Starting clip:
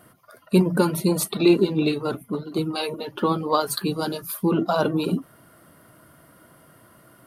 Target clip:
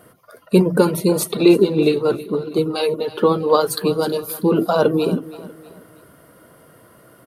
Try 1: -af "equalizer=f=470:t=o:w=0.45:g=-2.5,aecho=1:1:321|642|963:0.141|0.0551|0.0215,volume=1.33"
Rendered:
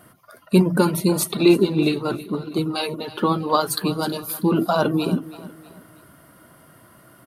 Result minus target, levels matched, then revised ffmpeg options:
500 Hz band -3.0 dB
-af "equalizer=f=470:t=o:w=0.45:g=9,aecho=1:1:321|642|963:0.141|0.0551|0.0215,volume=1.33"

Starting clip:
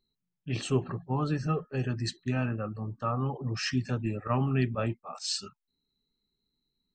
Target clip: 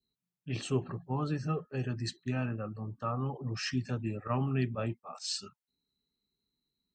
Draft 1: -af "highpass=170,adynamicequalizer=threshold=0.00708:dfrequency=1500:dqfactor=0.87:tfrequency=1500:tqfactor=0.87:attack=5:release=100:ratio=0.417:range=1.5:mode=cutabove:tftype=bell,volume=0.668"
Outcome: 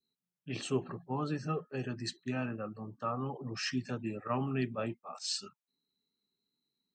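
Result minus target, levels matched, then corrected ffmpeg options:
125 Hz band -4.0 dB
-af "highpass=46,adynamicequalizer=threshold=0.00708:dfrequency=1500:dqfactor=0.87:tfrequency=1500:tqfactor=0.87:attack=5:release=100:ratio=0.417:range=1.5:mode=cutabove:tftype=bell,volume=0.668"

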